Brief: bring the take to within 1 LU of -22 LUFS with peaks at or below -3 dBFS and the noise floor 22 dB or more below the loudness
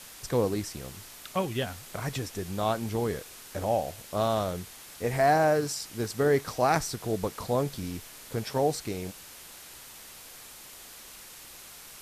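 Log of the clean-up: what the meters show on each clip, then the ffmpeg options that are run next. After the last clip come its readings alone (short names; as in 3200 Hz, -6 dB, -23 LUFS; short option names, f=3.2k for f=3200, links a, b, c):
noise floor -48 dBFS; noise floor target -52 dBFS; loudness -29.5 LUFS; peak -11.5 dBFS; loudness target -22.0 LUFS
-> -af "afftdn=nr=6:nf=-48"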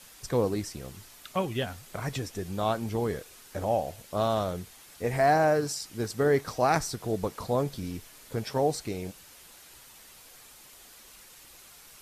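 noise floor -52 dBFS; loudness -29.5 LUFS; peak -11.0 dBFS; loudness target -22.0 LUFS
-> -af "volume=7.5dB"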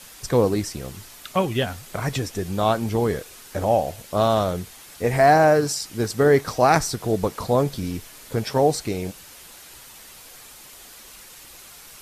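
loudness -22.0 LUFS; peak -3.5 dBFS; noise floor -45 dBFS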